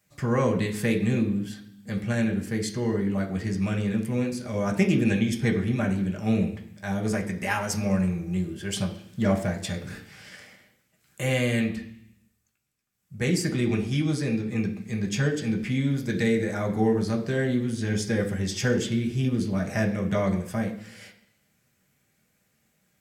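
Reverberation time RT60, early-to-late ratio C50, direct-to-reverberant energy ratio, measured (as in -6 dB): 0.65 s, 10.0 dB, 0.5 dB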